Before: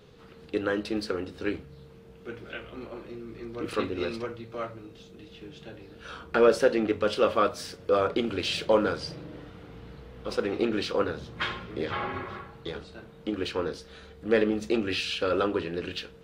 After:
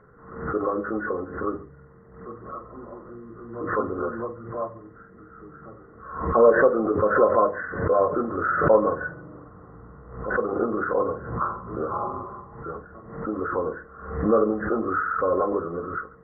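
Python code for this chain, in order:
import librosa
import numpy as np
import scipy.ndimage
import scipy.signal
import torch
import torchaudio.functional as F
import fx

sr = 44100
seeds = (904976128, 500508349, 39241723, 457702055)

y = fx.freq_compress(x, sr, knee_hz=1000.0, ratio=4.0)
y = fx.dynamic_eq(y, sr, hz=630.0, q=1.2, threshold_db=-38.0, ratio=4.0, max_db=6)
y = fx.hum_notches(y, sr, base_hz=50, count=10)
y = y + 10.0 ** (-21.0 / 20.0) * np.pad(y, (int(139 * sr / 1000.0), 0))[:len(y)]
y = fx.pre_swell(y, sr, db_per_s=77.0)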